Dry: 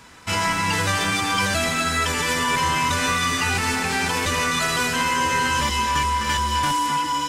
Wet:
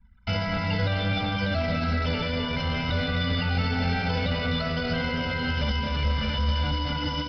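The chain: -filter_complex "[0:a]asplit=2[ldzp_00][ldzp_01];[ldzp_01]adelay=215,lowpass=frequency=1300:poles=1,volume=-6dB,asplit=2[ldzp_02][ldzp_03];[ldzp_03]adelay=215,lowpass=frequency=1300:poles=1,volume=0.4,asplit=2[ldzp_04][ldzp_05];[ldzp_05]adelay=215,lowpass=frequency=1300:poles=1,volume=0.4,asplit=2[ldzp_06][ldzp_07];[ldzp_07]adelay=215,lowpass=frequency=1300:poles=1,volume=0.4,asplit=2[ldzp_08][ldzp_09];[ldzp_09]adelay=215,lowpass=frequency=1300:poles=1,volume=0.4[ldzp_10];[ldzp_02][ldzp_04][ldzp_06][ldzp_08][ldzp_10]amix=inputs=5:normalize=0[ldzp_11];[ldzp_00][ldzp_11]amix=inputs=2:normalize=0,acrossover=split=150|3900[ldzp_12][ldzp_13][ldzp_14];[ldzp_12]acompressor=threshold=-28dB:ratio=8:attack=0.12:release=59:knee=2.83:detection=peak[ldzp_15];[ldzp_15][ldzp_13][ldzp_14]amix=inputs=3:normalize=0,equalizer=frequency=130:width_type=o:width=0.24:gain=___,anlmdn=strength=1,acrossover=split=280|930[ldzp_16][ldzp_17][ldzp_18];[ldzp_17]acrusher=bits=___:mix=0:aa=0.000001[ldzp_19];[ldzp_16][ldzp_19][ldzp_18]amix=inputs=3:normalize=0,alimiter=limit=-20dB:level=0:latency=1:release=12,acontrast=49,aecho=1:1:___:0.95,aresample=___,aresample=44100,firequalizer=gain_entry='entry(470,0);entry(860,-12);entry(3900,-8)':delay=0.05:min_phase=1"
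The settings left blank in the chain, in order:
-6.5, 6, 1.4, 11025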